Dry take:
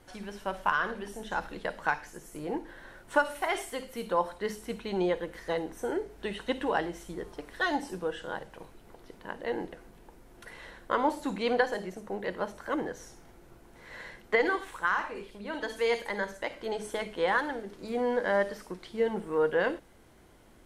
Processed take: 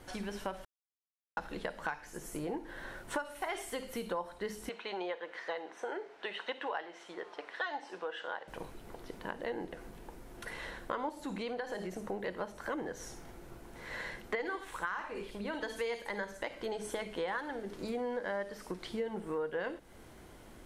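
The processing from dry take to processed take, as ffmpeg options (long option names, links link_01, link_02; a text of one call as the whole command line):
ffmpeg -i in.wav -filter_complex "[0:a]asettb=1/sr,asplit=3[link_01][link_02][link_03];[link_01]atrim=end=4.694[link_04];[link_02]atrim=start=4.69:end=8.48,asetpts=PTS-STARTPTS,afade=type=in:duration=0.004:curve=qsin,afade=type=out:start_time=3.786:duration=0.004:curve=qsin,highpass=640,lowpass=3700[link_05];[link_03]atrim=start=8.476[link_06];[link_04][link_05]acrossfade=duration=0.004:curve1=hsin:curve2=qsin[link_07];[link_07][link_06]acrossfade=duration=0.004:curve1=qsin:curve2=hsin,asettb=1/sr,asplit=3[link_08][link_09][link_10];[link_08]atrim=end=11.094[link_11];[link_09]atrim=start=11.09:end=12.07,asetpts=PTS-STARTPTS,afade=type=in:duration=0.004:curve=qsin,afade=type=out:start_time=0.976:duration=0.004:curve=qsin,acompressor=threshold=-37dB:ratio=2:attack=3.2:release=140:knee=1:detection=peak[link_12];[link_10]atrim=start=12.066[link_13];[link_11][link_12]acrossfade=duration=0.004:curve1=hsin:curve2=qsin[link_14];[link_14][link_13]acrossfade=duration=0.004:curve1=qsin:curve2=hsin,asplit=3[link_15][link_16][link_17];[link_15]atrim=end=0.65,asetpts=PTS-STARTPTS,afade=type=out:start_time=0.646:duration=0.004:curve=hsin[link_18];[link_16]atrim=start=0.65:end=1.37,asetpts=PTS-STARTPTS,volume=0[link_19];[link_17]atrim=start=1.37,asetpts=PTS-STARTPTS,afade=type=in:duration=0.004:curve=hsin[link_20];[link_18][link_19][link_20]concat=n=3:v=0:a=1,acompressor=threshold=-40dB:ratio=4,volume=4dB" out.wav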